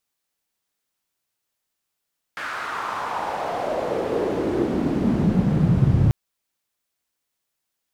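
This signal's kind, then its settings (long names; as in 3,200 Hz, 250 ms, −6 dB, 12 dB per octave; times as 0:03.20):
filter sweep on noise pink, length 3.74 s bandpass, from 1,600 Hz, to 110 Hz, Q 3, exponential, gain ramp +14 dB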